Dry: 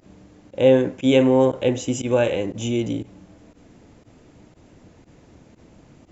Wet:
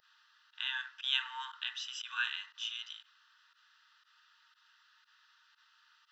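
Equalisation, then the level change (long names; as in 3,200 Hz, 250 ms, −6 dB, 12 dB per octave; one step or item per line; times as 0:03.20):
linear-phase brick-wall high-pass 900 Hz
phaser with its sweep stopped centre 1,500 Hz, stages 8
0.0 dB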